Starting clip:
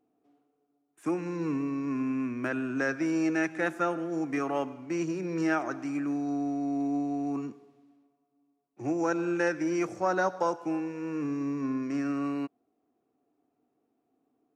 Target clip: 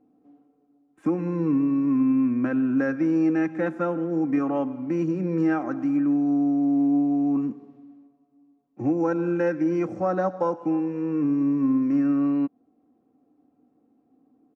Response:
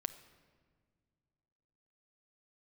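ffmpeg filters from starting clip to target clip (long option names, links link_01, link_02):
-filter_complex "[0:a]aecho=1:1:3.8:0.5,asplit=2[link_01][link_02];[link_02]acompressor=threshold=-38dB:ratio=6,volume=2dB[link_03];[link_01][link_03]amix=inputs=2:normalize=0,lowpass=frequency=1000:poles=1,equalizer=frequency=140:width=0.79:gain=9"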